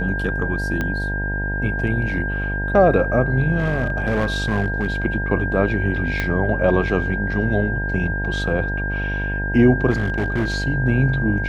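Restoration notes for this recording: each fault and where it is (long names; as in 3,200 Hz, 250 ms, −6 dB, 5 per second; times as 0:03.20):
mains buzz 50 Hz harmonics 19 −25 dBFS
whistle 1,600 Hz −25 dBFS
0:00.81: click −11 dBFS
0:03.58–0:04.90: clipping −15 dBFS
0:06.20: click −9 dBFS
0:09.90–0:10.54: clipping −16.5 dBFS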